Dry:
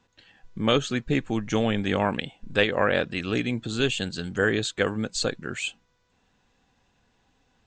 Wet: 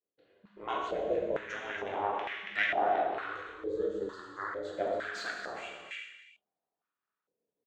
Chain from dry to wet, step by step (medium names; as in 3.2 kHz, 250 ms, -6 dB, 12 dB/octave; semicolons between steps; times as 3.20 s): tracing distortion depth 0.021 ms; expander -54 dBFS; peaking EQ 810 Hz -6.5 dB 2 oct; compression 2.5:1, threshold -28 dBFS, peak gain reduction 7 dB; 3.15–4.65 s: static phaser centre 1.1 kHz, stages 4; ring modulator 200 Hz; delay 279 ms -10.5 dB; gated-style reverb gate 450 ms falling, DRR -2.5 dB; step-sequenced band-pass 2.2 Hz 480–1900 Hz; trim +8.5 dB